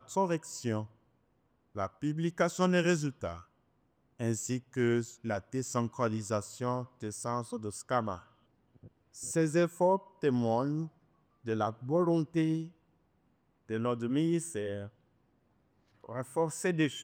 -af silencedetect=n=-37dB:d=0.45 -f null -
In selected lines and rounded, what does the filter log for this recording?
silence_start: 0.83
silence_end: 1.76 | silence_duration: 0.93
silence_start: 3.38
silence_end: 4.20 | silence_duration: 0.83
silence_start: 8.17
silence_end: 9.19 | silence_duration: 1.02
silence_start: 10.86
silence_end: 11.46 | silence_duration: 0.60
silence_start: 12.65
silence_end: 13.70 | silence_duration: 1.05
silence_start: 14.86
silence_end: 16.09 | silence_duration: 1.23